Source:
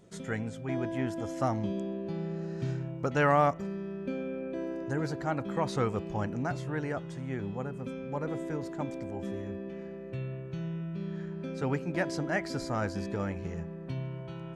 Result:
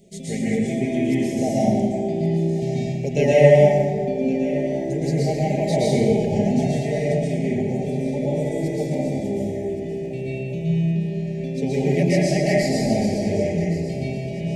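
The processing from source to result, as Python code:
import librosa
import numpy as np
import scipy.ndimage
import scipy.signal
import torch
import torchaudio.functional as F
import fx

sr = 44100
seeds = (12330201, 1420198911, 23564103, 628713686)

y = scipy.signal.sosfilt(scipy.signal.ellip(3, 1.0, 60, [740.0, 2100.0], 'bandstop', fs=sr, output='sos'), x)
y = fx.high_shelf(y, sr, hz=6600.0, db=5.5)
y = y + 0.61 * np.pad(y, (int(4.9 * sr / 1000.0), 0))[:len(y)]
y = fx.echo_feedback(y, sr, ms=1117, feedback_pct=51, wet_db=-15.0)
y = fx.rev_plate(y, sr, seeds[0], rt60_s=1.9, hf_ratio=0.55, predelay_ms=105, drr_db=-7.5)
y = y * librosa.db_to_amplitude(4.0)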